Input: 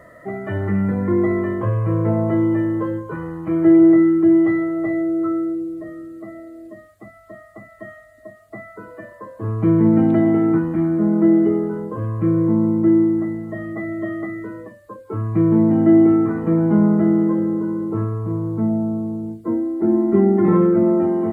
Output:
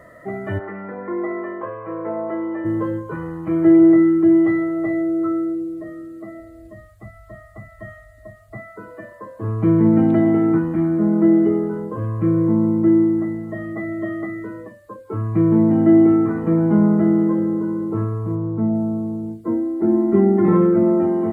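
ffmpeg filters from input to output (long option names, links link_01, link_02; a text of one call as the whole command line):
ffmpeg -i in.wav -filter_complex "[0:a]asplit=3[link_01][link_02][link_03];[link_01]afade=type=out:start_time=0.58:duration=0.02[link_04];[link_02]highpass=480,lowpass=2000,afade=type=in:start_time=0.58:duration=0.02,afade=type=out:start_time=2.64:duration=0.02[link_05];[link_03]afade=type=in:start_time=2.64:duration=0.02[link_06];[link_04][link_05][link_06]amix=inputs=3:normalize=0,asplit=3[link_07][link_08][link_09];[link_07]afade=type=out:start_time=6.4:duration=0.02[link_10];[link_08]asubboost=boost=11:cutoff=85,afade=type=in:start_time=6.4:duration=0.02,afade=type=out:start_time=8.57:duration=0.02[link_11];[link_09]afade=type=in:start_time=8.57:duration=0.02[link_12];[link_10][link_11][link_12]amix=inputs=3:normalize=0,asettb=1/sr,asplit=3[link_13][link_14][link_15];[link_13]atrim=end=18.354[link_16];[link_14]atrim=start=18.35:end=18.75,asetpts=PTS-STARTPTS,afade=type=in:duration=0.004:curve=qsin,afade=type=out:start_time=0.396:duration=0.004:curve=qsin,lowpass=frequency=1900:poles=1[link_17];[link_15]atrim=start=18.746[link_18];[link_16][link_17]acrossfade=duration=0.004:curve1=hsin:curve2=qsin[link_19];[link_19][link_18]acrossfade=duration=0.004:curve1=qsin:curve2=hsin" out.wav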